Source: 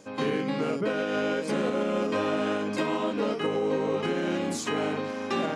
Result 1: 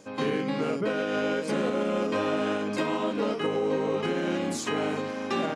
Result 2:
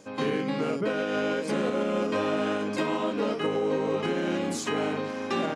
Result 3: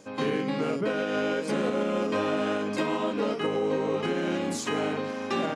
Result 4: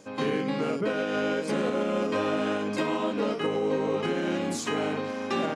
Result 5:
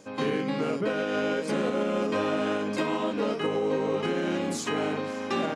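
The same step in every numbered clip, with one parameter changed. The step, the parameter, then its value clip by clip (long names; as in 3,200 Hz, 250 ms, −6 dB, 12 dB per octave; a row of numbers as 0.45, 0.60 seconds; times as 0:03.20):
single-tap delay, delay time: 372, 1,126, 162, 107, 555 milliseconds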